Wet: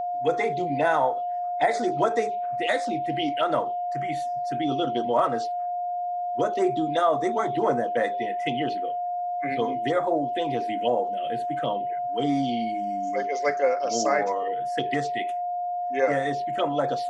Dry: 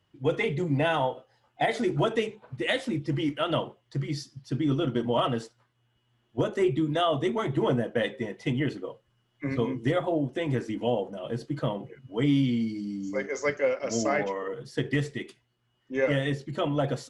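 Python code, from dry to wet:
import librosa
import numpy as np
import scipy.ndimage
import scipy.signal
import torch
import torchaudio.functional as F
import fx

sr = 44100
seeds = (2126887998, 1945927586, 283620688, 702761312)

y = fx.weighting(x, sr, curve='A')
y = fx.env_phaser(y, sr, low_hz=440.0, high_hz=3000.0, full_db=-26.5)
y = y + 10.0 ** (-32.0 / 20.0) * np.sin(2.0 * np.pi * 710.0 * np.arange(len(y)) / sr)
y = F.gain(torch.from_numpy(y), 6.0).numpy()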